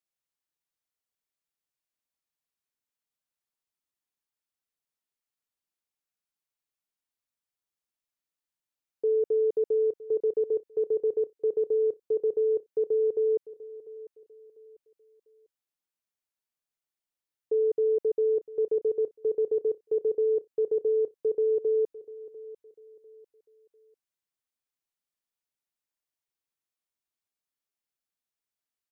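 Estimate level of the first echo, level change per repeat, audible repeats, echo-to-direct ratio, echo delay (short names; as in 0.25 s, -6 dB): -17.5 dB, -10.0 dB, 2, -17.0 dB, 0.697 s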